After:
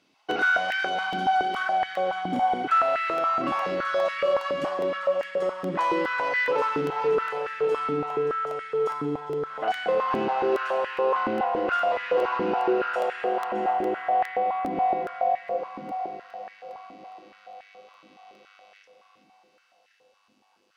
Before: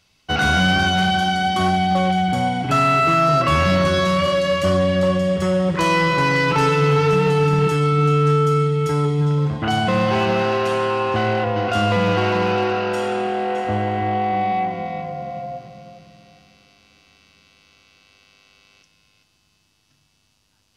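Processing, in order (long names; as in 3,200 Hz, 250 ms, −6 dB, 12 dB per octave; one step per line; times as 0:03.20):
high-shelf EQ 3,700 Hz −11 dB
in parallel at −7 dB: sine wavefolder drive 3 dB, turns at −9 dBFS
on the sum: feedback delay with all-pass diffusion 889 ms, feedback 45%, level −13 dB
downward compressor, threshold −18 dBFS, peak gain reduction 10 dB
regular buffer underruns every 0.41 s, samples 64, repeat, from 0:00.31
high-pass on a step sequencer 7.1 Hz 280–1,800 Hz
level −8 dB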